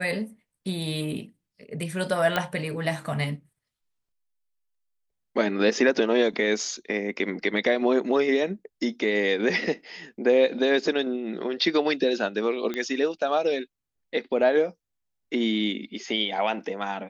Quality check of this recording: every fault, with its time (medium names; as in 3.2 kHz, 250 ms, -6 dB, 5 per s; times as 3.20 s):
2.36 s: pop -10 dBFS
12.74 s: pop -17 dBFS